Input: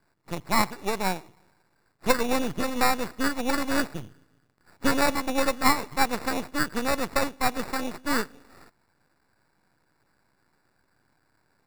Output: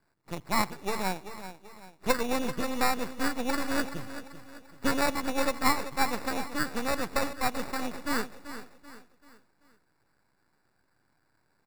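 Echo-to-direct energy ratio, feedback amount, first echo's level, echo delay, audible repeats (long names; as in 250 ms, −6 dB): −11.0 dB, 41%, −12.0 dB, 386 ms, 3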